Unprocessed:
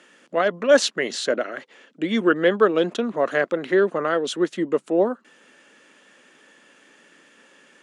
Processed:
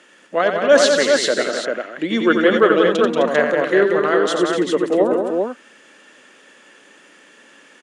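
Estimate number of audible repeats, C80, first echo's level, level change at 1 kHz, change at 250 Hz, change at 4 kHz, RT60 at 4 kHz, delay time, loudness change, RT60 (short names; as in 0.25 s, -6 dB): 4, none, -6.5 dB, +6.0 dB, +4.5 dB, +6.0 dB, none, 88 ms, +5.0 dB, none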